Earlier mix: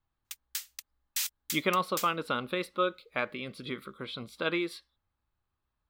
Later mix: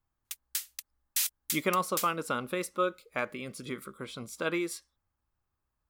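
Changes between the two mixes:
speech: add high shelf with overshoot 5,100 Hz +9 dB, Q 3
background: add parametric band 11,000 Hz +7.5 dB 0.64 octaves

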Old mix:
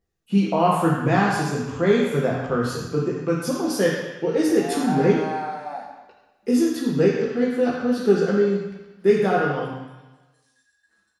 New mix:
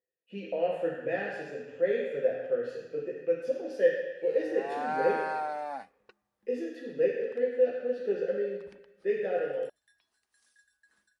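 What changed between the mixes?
speech: add formant filter e
background: send off

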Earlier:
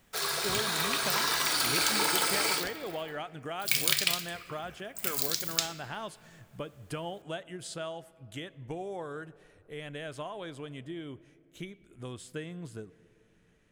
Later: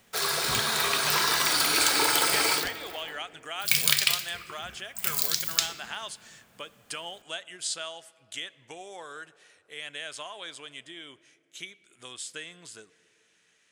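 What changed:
speech: add meter weighting curve ITU-R 468
background +4.0 dB

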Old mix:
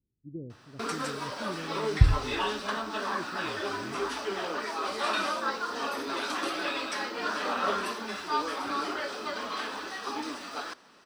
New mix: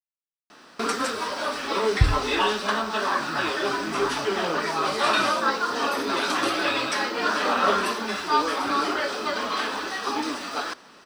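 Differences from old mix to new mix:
speech: entry +2.95 s
first sound +7.5 dB

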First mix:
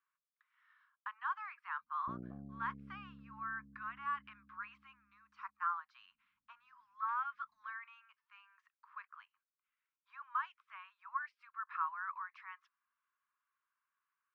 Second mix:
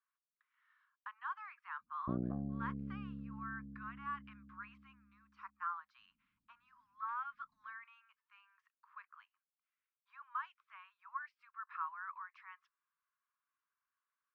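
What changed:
speech −4.0 dB
background +9.5 dB

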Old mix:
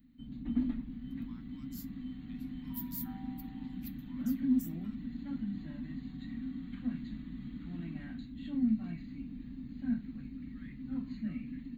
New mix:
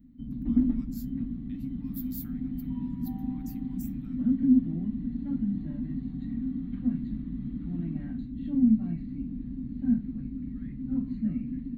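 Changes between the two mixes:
speech: entry −0.80 s
background: add tilt shelving filter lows +9.5 dB, about 920 Hz

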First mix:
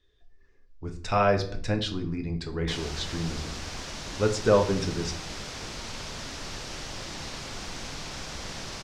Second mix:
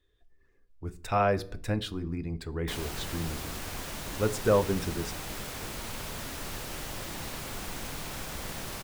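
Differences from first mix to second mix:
speech: send −11.5 dB
master: remove low-pass with resonance 5,600 Hz, resonance Q 1.9

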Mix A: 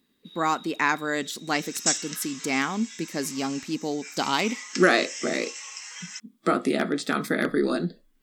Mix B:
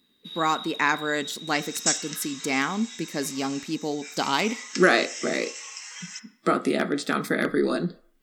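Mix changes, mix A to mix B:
speech: send on
first sound +10.0 dB

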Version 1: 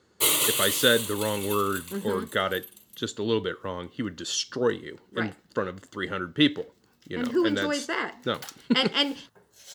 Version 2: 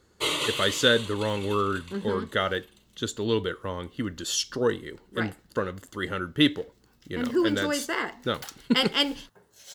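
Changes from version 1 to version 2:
speech: remove band-pass filter 110–7,200 Hz
first sound: add low-pass filter 4,500 Hz 12 dB per octave

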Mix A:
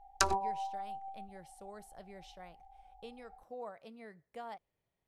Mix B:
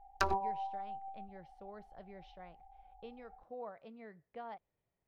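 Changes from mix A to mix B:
background: remove low-pass filter 5,300 Hz 12 dB per octave
master: add high-frequency loss of the air 280 metres

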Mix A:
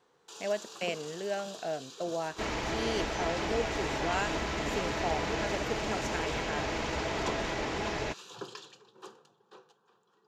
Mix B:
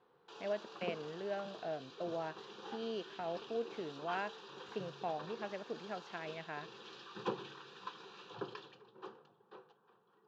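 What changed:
speech −5.0 dB
second sound: muted
master: add high-frequency loss of the air 290 metres

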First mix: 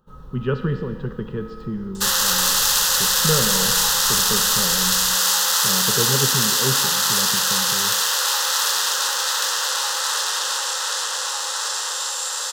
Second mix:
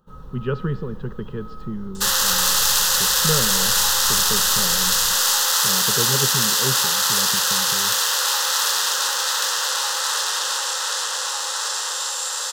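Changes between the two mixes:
speech: send −10.5 dB
first sound: send on

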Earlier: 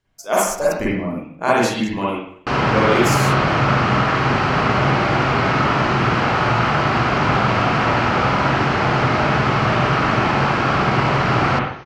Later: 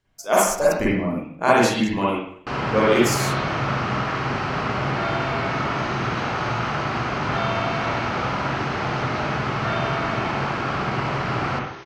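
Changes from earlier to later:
first sound −7.5 dB
second sound +5.5 dB

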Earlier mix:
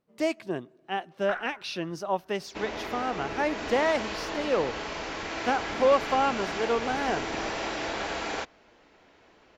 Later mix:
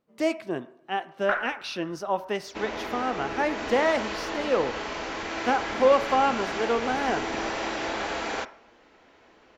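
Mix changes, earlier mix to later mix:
first sound +5.0 dB
reverb: on, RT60 0.60 s

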